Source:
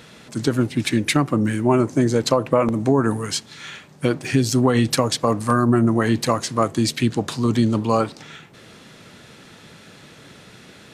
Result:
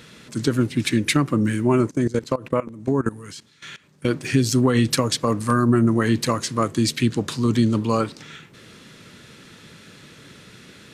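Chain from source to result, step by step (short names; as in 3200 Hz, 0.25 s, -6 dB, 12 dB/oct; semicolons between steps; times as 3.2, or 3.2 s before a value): bell 740 Hz -8.5 dB 0.69 oct; 1.87–4.08 level quantiser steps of 19 dB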